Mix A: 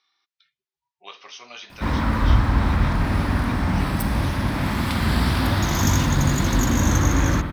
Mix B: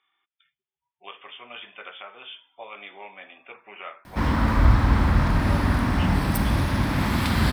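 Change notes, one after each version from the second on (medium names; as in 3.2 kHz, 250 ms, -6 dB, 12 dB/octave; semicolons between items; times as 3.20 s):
speech: add brick-wall FIR low-pass 3.6 kHz; background: entry +2.35 s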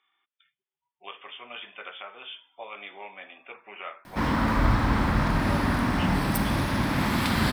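master: add peaking EQ 66 Hz -10 dB 1.3 oct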